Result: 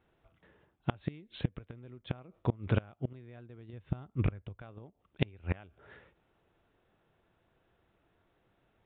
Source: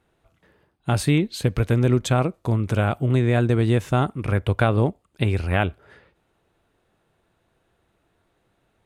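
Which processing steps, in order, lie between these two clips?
3.73–4.62 s: bass shelf 130 Hz +11.5 dB; inverted gate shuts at -12 dBFS, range -27 dB; resampled via 8 kHz; trim -4.5 dB

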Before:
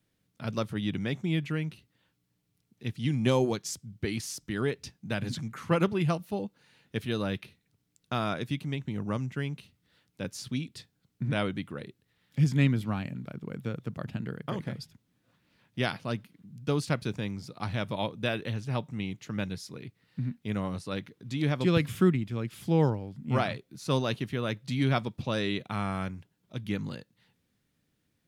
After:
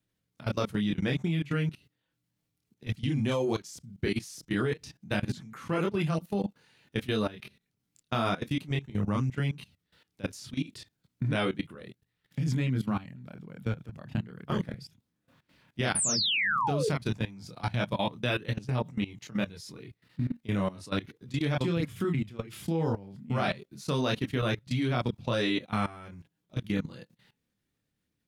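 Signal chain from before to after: painted sound fall, 15.95–16.89 s, 400–10000 Hz -27 dBFS; chorus voices 2, 0.16 Hz, delay 27 ms, depth 3.6 ms; level held to a coarse grid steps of 18 dB; trim +8.5 dB

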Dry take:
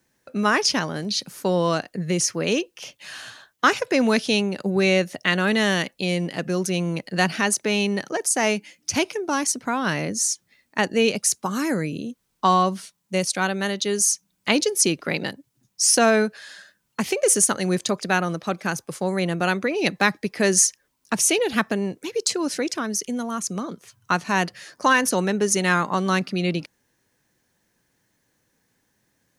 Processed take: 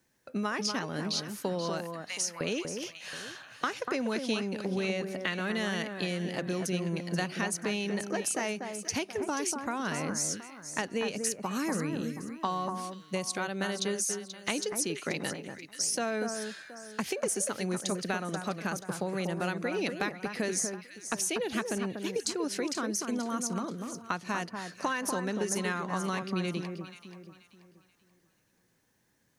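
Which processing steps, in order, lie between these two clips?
1.83–2.41 s: steep high-pass 760 Hz; compression, threshold -25 dBFS, peak gain reduction 12.5 dB; on a send: echo whose repeats swap between lows and highs 241 ms, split 1.7 kHz, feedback 56%, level -5.5 dB; on the sum: trim -4 dB

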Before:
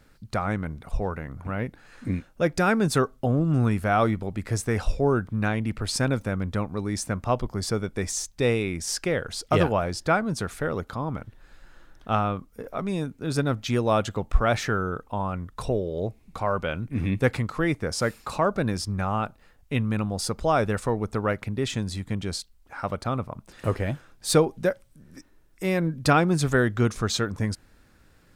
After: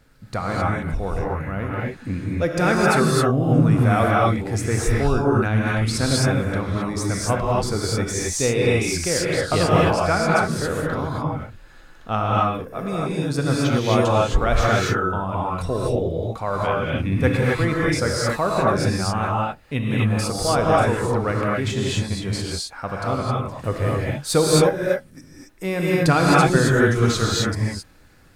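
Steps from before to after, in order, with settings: gated-style reverb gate 290 ms rising, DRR -5 dB

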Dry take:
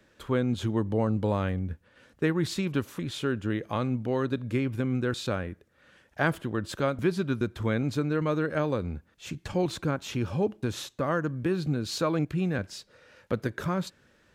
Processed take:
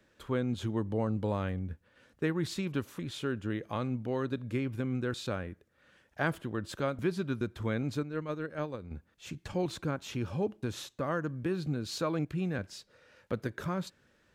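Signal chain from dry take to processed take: 8.03–8.91 s: gate -25 dBFS, range -8 dB; trim -5 dB

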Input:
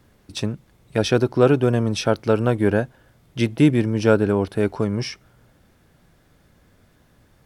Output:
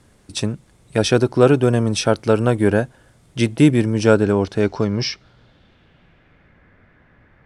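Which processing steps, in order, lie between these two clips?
low-pass sweep 9 kHz -> 2 kHz, 3.90–6.65 s; trim +2.5 dB

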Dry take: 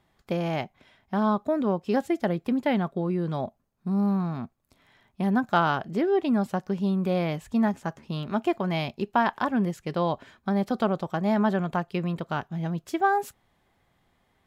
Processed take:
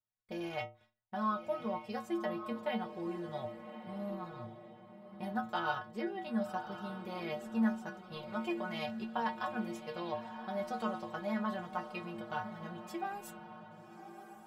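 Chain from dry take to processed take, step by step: gate -54 dBFS, range -22 dB; peaking EQ 280 Hz -14.5 dB 0.6 oct; in parallel at -3 dB: level held to a coarse grid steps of 16 dB; on the sum: inharmonic resonator 110 Hz, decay 0.38 s, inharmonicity 0.008; on a send: echo that smears into a reverb 1133 ms, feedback 40%, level -10 dB; on the sum: tape noise reduction on one side only decoder only

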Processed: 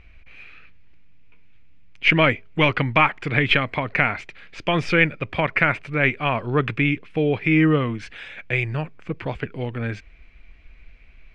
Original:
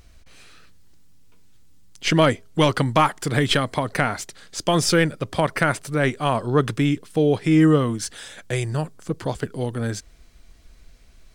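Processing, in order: resonant low-pass 2.4 kHz, resonance Q 5.7; bass shelf 78 Hz +6.5 dB; trim -3 dB

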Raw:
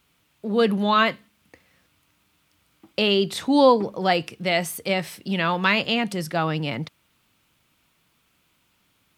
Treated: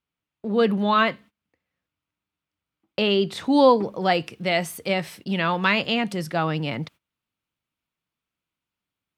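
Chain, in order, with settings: gate -44 dBFS, range -20 dB; treble shelf 5.3 kHz -10.5 dB, from 3.44 s -5 dB

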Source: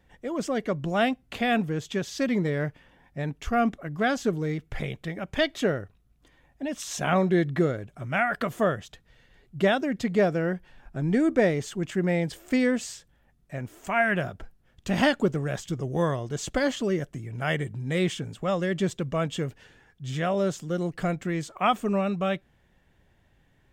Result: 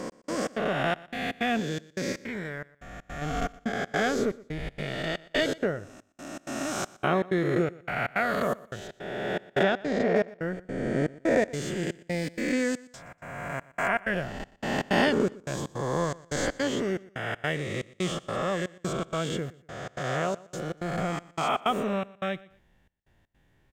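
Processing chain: reverse spectral sustain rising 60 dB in 2.22 s; 2.12–3.22 s: ten-band graphic EQ 125 Hz -6 dB, 250 Hz -6 dB, 500 Hz -7 dB, 4 kHz -5 dB; trance gate "x..xx.xxx" 160 bpm -60 dB; 9.63–10.16 s: distance through air 110 m; feedback delay 120 ms, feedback 29%, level -21 dB; trim -5 dB

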